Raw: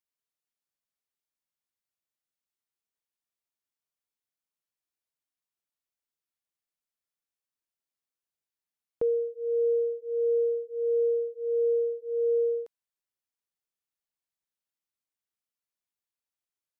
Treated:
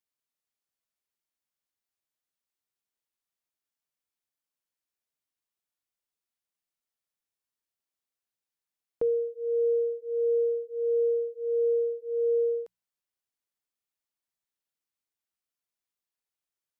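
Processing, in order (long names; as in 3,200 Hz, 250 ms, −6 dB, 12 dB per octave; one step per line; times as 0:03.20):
mains-hum notches 60/120/180 Hz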